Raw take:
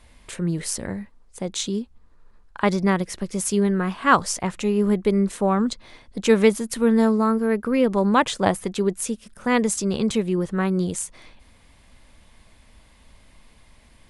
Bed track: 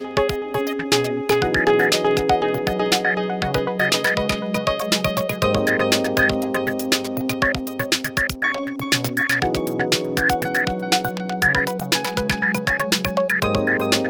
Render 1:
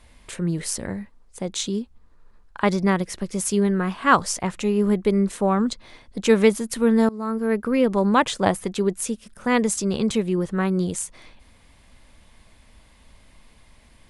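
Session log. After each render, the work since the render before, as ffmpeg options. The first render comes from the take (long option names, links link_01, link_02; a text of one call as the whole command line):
ffmpeg -i in.wav -filter_complex "[0:a]asplit=2[link_01][link_02];[link_01]atrim=end=7.09,asetpts=PTS-STARTPTS,afade=type=out:start_time=7.086:duration=0.004:curve=hsin:silence=0.0794328[link_03];[link_02]atrim=start=7.09,asetpts=PTS-STARTPTS,afade=type=in:duration=0.44:silence=0.0794328[link_04];[link_03][link_04]concat=n=2:v=0:a=1" out.wav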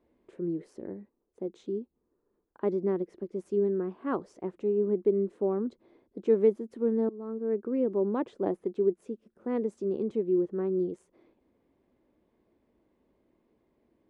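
ffmpeg -i in.wav -af "bandpass=frequency=360:width_type=q:width=3.6:csg=0" out.wav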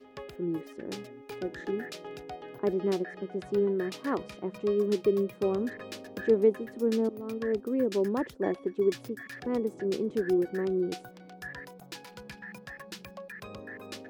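ffmpeg -i in.wav -i bed.wav -filter_complex "[1:a]volume=-24dB[link_01];[0:a][link_01]amix=inputs=2:normalize=0" out.wav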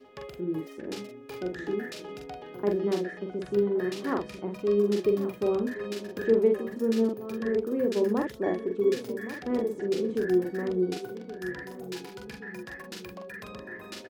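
ffmpeg -i in.wav -filter_complex "[0:a]asplit=2[link_01][link_02];[link_02]adelay=44,volume=-3.5dB[link_03];[link_01][link_03]amix=inputs=2:normalize=0,asplit=2[link_04][link_05];[link_05]adelay=1121,lowpass=frequency=1200:poles=1,volume=-12dB,asplit=2[link_06][link_07];[link_07]adelay=1121,lowpass=frequency=1200:poles=1,volume=0.46,asplit=2[link_08][link_09];[link_09]adelay=1121,lowpass=frequency=1200:poles=1,volume=0.46,asplit=2[link_10][link_11];[link_11]adelay=1121,lowpass=frequency=1200:poles=1,volume=0.46,asplit=2[link_12][link_13];[link_13]adelay=1121,lowpass=frequency=1200:poles=1,volume=0.46[link_14];[link_04][link_06][link_08][link_10][link_12][link_14]amix=inputs=6:normalize=0" out.wav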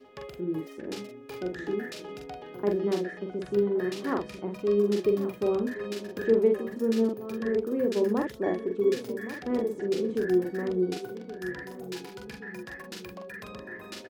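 ffmpeg -i in.wav -af anull out.wav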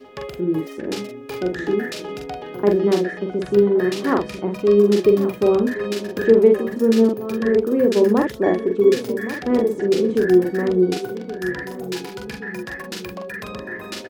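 ffmpeg -i in.wav -af "volume=10dB,alimiter=limit=-3dB:level=0:latency=1" out.wav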